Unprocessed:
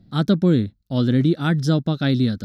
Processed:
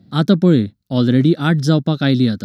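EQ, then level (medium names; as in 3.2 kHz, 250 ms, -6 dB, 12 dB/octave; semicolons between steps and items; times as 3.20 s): high-pass 110 Hz; +5.0 dB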